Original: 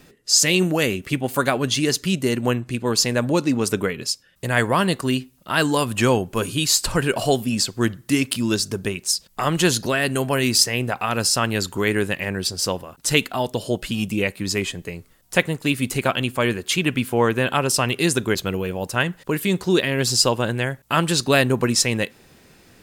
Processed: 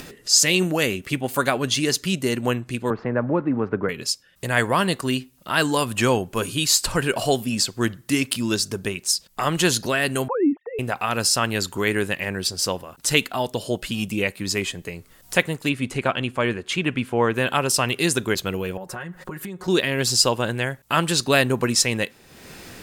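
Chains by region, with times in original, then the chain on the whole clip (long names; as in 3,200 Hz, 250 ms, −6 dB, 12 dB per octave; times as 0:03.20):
0:02.90–0:03.89: one scale factor per block 5 bits + low-pass filter 1,600 Hz 24 dB per octave + multiband upward and downward compressor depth 40%
0:10.28–0:10.79: three sine waves on the formant tracks + low-pass filter 1,100 Hz 24 dB per octave + notch comb filter 570 Hz
0:15.69–0:17.34: low-pass filter 6,500 Hz + parametric band 5,000 Hz −6.5 dB 1.4 octaves
0:18.77–0:19.68: high shelf with overshoot 2,100 Hz −7 dB, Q 1.5 + comb filter 5.5 ms, depth 88% + downward compressor 8 to 1, threshold −29 dBFS
whole clip: low-shelf EQ 480 Hz −3 dB; upward compression, threshold −29 dBFS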